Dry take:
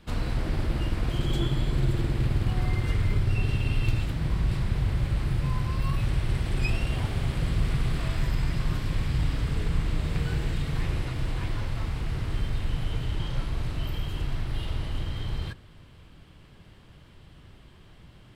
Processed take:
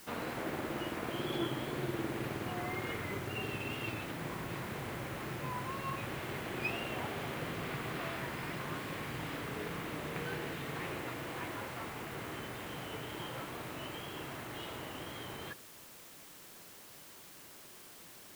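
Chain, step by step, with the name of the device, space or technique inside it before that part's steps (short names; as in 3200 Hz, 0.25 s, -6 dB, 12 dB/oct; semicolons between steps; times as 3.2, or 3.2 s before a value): wax cylinder (BPF 320–2600 Hz; wow and flutter; white noise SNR 14 dB)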